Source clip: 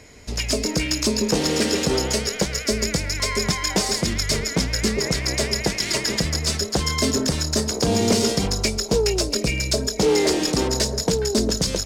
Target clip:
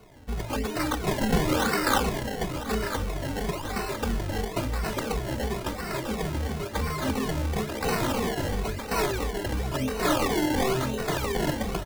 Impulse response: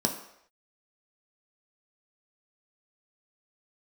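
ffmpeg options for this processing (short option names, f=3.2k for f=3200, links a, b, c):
-filter_complex "[0:a]aeval=exprs='(mod(5.62*val(0)+1,2)-1)/5.62':c=same,asettb=1/sr,asplit=3[a][b][c];[a]atrim=end=0.794[d];[b]atrim=start=0.79:end=2.11,asetpts=PTS-STARTPTS,afade=t=in:d=0.004:c=qsin,afade=t=out:st=1.316:d=0.004:c=qsin,equalizer=f=1.4k:t=o:w=0.66:g=14.5[e];[c]atrim=start=2.106[f];[d][e]acrossfade=d=0.004:c1=hsin:c2=qsin[g];[g][f]acrossfade=d=0.004:c1=qsin:c2=hsin,asettb=1/sr,asplit=3[h][i][j];[h]atrim=end=9.784[k];[i]atrim=start=9.78:end=11.09,asetpts=PTS-STARTPTS,afade=t=in:d=0.004:c=qsin,afade=t=out:st=1.306:d=0.004:c=qsin,asplit=2[l][m];[m]adelay=23,volume=-4dB[n];[l][n]amix=inputs=2:normalize=0,atrim=end_sample=57771[o];[j]atrim=start=11.086[p];[k][o]acrossfade=d=0.004:c1=hsin:c2=qsin[q];[q][p]acrossfade=d=0.004:c1=qsin:c2=hsin,aemphasis=mode=reproduction:type=75kf,aecho=1:1:998:0.237,acrusher=samples=25:mix=1:aa=0.000001:lfo=1:lforange=25:lforate=0.98,asplit=2[r][s];[s]adelay=2.3,afreqshift=-2.9[t];[r][t]amix=inputs=2:normalize=1"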